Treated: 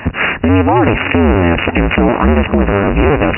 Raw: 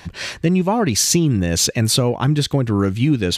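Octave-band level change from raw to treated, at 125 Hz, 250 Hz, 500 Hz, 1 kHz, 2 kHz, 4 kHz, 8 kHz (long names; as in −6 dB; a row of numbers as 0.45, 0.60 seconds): +3.0 dB, +6.0 dB, +9.0 dB, +11.5 dB, +13.5 dB, −4.0 dB, below −40 dB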